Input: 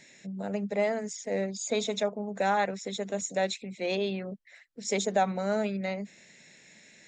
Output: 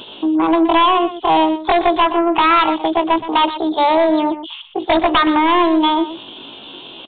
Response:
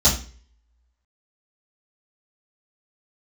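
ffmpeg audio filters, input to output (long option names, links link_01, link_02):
-filter_complex "[0:a]equalizer=frequency=72:width_type=o:width=0.41:gain=12.5,asplit=2[link_01][link_02];[link_02]acompressor=threshold=-39dB:ratio=6,volume=0.5dB[link_03];[link_01][link_03]amix=inputs=2:normalize=0,asetrate=72056,aresample=44100,atempo=0.612027,aeval=exprs='0.237*sin(PI/2*2.82*val(0)/0.237)':channel_layout=same,asplit=2[link_04][link_05];[link_05]aecho=0:1:121:0.237[link_06];[link_04][link_06]amix=inputs=2:normalize=0,aresample=8000,aresample=44100,volume=4dB"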